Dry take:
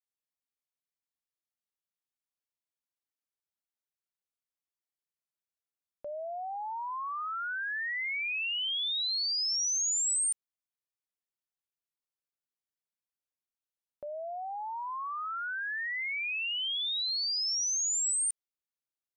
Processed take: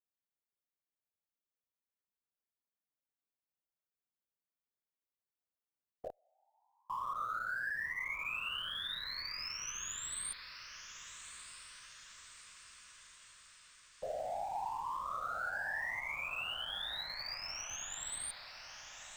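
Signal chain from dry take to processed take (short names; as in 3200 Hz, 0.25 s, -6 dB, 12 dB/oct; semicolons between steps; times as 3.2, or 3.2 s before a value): bell 6400 Hz -13.5 dB 2.6 oct; whisperiser; 6.09–6.9 flipped gate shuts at -35 dBFS, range -37 dB; in parallel at -12 dB: Schmitt trigger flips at -39.5 dBFS; on the sum: diffused feedback echo 1.235 s, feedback 58%, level -10.5 dB; gain -1 dB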